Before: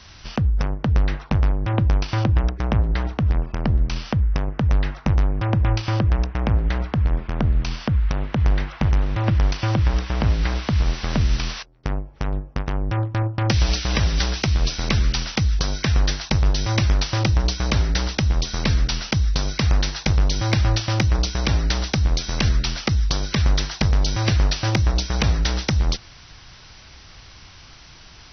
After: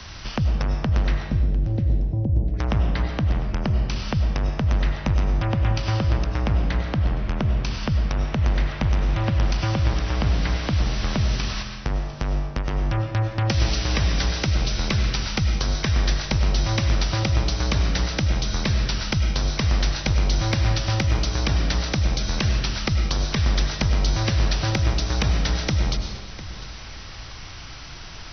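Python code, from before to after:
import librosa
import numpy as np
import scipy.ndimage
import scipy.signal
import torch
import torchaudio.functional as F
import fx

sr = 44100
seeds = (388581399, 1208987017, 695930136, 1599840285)

y = fx.gaussian_blur(x, sr, sigma=17.0, at=(1.26, 2.54))
y = fx.echo_feedback(y, sr, ms=701, feedback_pct=21, wet_db=-21.5)
y = fx.rev_freeverb(y, sr, rt60_s=0.92, hf_ratio=0.9, predelay_ms=60, drr_db=5.0)
y = fx.band_squash(y, sr, depth_pct=40)
y = y * librosa.db_to_amplitude(-2.5)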